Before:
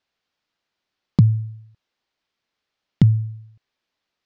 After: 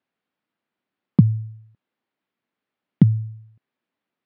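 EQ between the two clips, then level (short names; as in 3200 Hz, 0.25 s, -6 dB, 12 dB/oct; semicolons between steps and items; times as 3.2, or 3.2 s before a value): BPF 110–2500 Hz; bell 230 Hz +8 dB 1.4 oct; -2.5 dB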